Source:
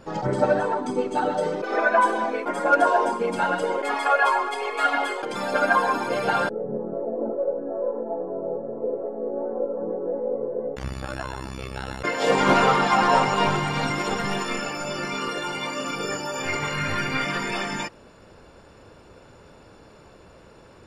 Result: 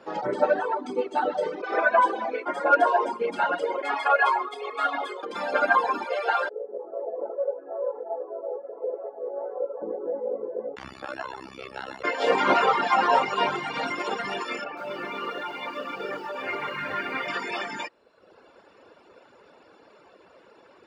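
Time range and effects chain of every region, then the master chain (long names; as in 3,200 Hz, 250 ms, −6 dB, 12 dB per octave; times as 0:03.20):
0:04.45–0:05.35: parametric band 1,800 Hz −6.5 dB 2.8 octaves + hollow resonant body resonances 1,200/3,600 Hz, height 14 dB, ringing for 30 ms
0:06.05–0:09.82: high-pass filter 420 Hz 24 dB per octave + high-shelf EQ 8,500 Hz −3 dB
0:14.64–0:17.28: high-frequency loss of the air 260 metres + feedback echo at a low word length 127 ms, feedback 55%, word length 7 bits, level −6 dB
whole clip: high-pass filter 50 Hz; reverb reduction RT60 0.95 s; three-way crossover with the lows and the highs turned down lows −20 dB, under 260 Hz, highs −14 dB, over 4,800 Hz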